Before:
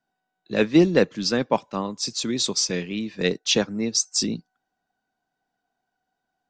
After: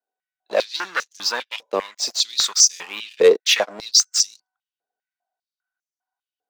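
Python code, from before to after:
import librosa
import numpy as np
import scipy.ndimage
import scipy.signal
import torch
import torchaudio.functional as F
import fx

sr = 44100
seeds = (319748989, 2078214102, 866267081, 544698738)

y = fx.leveller(x, sr, passes=3)
y = fx.filter_held_highpass(y, sr, hz=5.0, low_hz=460.0, high_hz=6100.0)
y = F.gain(torch.from_numpy(y), -7.0).numpy()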